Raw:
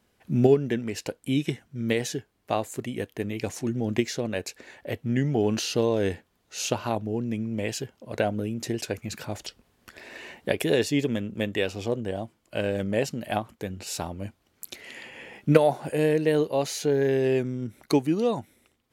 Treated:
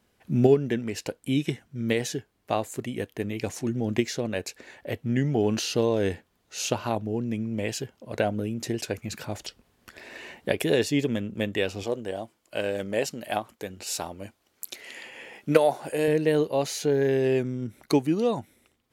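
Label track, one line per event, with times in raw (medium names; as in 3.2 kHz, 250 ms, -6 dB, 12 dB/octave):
11.830000	16.080000	tone controls bass -9 dB, treble +3 dB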